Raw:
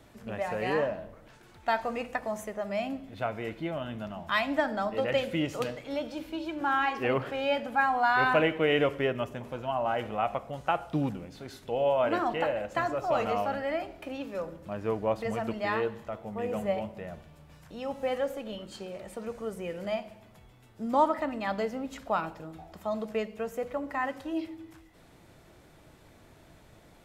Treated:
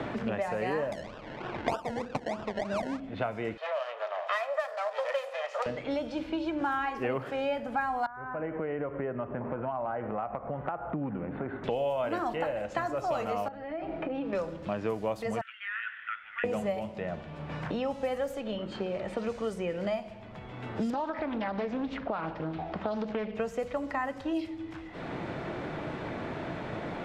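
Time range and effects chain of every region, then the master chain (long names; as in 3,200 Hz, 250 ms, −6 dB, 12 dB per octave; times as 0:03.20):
0:00.92–0:03.00: sample-and-hold swept by an LFO 29×, swing 60% 3.2 Hz + high-frequency loss of the air 61 metres + one half of a high-frequency compander encoder only
0:03.57–0:05.66: lower of the sound and its delayed copy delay 1.6 ms + elliptic high-pass filter 550 Hz, stop band 70 dB
0:08.06–0:11.64: inverse Chebyshev low-pass filter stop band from 5,100 Hz, stop band 60 dB + downward compressor 3 to 1, threshold −42 dBFS
0:13.48–0:14.33: low-pass filter 1,000 Hz 6 dB per octave + comb filter 6.2 ms, depth 49% + downward compressor 4 to 1, threshold −42 dBFS
0:15.41–0:16.44: Chebyshev band-pass filter 1,400–3,500 Hz, order 4 + downward compressor 8 to 1, threshold −40 dBFS + log-companded quantiser 8 bits
0:20.90–0:23.35: downward compressor 3 to 1, threshold −34 dBFS + high-frequency loss of the air 150 metres + highs frequency-modulated by the lows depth 0.5 ms
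whole clip: low-pass that shuts in the quiet parts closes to 2,300 Hz, open at −25.5 dBFS; dynamic equaliser 3,200 Hz, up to −4 dB, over −45 dBFS, Q 1.1; multiband upward and downward compressor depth 100%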